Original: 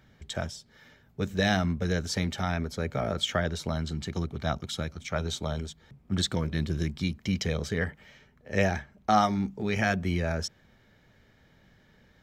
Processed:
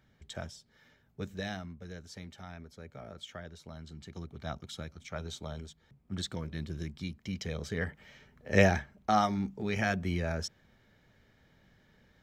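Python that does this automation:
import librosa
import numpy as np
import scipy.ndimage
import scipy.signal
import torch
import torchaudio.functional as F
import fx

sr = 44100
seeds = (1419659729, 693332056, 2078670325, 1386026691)

y = fx.gain(x, sr, db=fx.line((1.2, -8.0), (1.7, -17.0), (3.62, -17.0), (4.52, -9.0), (7.38, -9.0), (8.56, 3.0), (9.11, -4.0)))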